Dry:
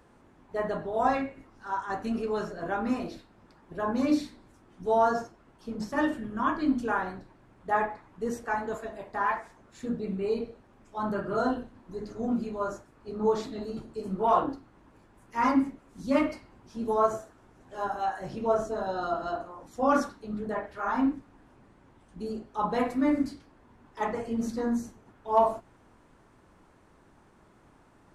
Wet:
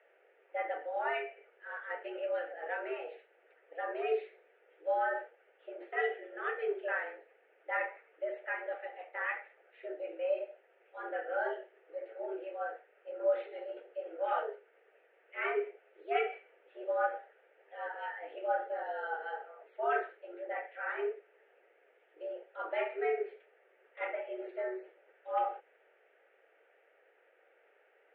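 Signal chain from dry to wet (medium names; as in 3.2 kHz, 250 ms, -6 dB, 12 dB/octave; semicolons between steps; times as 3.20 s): static phaser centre 2.2 kHz, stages 4; mistuned SSB +140 Hz 340–2800 Hz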